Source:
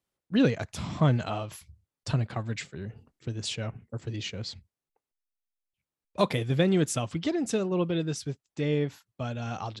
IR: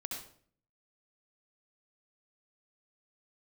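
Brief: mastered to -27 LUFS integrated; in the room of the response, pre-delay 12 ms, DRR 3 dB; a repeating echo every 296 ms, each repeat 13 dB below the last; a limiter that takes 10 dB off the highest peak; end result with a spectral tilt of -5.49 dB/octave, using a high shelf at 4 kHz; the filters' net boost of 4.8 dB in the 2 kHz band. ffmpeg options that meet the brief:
-filter_complex "[0:a]equalizer=f=2000:t=o:g=8,highshelf=f=4000:g=-7.5,alimiter=limit=0.112:level=0:latency=1,aecho=1:1:296|592|888:0.224|0.0493|0.0108,asplit=2[s0][s1];[1:a]atrim=start_sample=2205,adelay=12[s2];[s1][s2]afir=irnorm=-1:irlink=0,volume=0.708[s3];[s0][s3]amix=inputs=2:normalize=0,volume=1.5"

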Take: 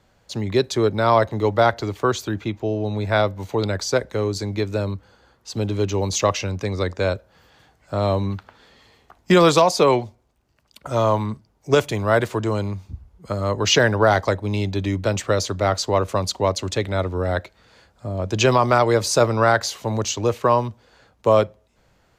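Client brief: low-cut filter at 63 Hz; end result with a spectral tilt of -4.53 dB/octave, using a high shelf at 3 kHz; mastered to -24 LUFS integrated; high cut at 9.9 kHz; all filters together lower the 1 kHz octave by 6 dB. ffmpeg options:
-af "highpass=63,lowpass=9900,equalizer=f=1000:t=o:g=-8.5,highshelf=f=3000:g=3,volume=0.841"

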